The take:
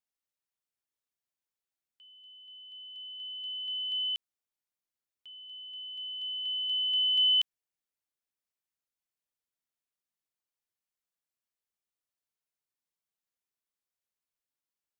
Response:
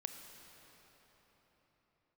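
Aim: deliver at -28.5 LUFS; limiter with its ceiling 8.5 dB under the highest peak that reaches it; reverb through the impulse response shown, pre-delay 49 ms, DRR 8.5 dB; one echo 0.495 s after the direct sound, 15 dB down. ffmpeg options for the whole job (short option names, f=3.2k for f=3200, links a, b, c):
-filter_complex "[0:a]alimiter=level_in=5.5dB:limit=-24dB:level=0:latency=1,volume=-5.5dB,aecho=1:1:495:0.178,asplit=2[a][b];[1:a]atrim=start_sample=2205,adelay=49[c];[b][c]afir=irnorm=-1:irlink=0,volume=-6.5dB[d];[a][d]amix=inputs=2:normalize=0,volume=2dB"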